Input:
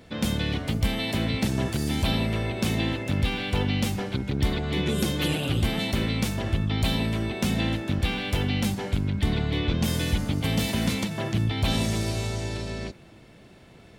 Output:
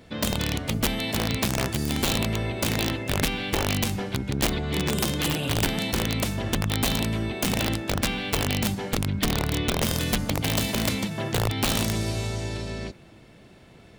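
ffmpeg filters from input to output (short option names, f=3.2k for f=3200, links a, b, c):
-af "aeval=exprs='(mod(7.08*val(0)+1,2)-1)/7.08':c=same"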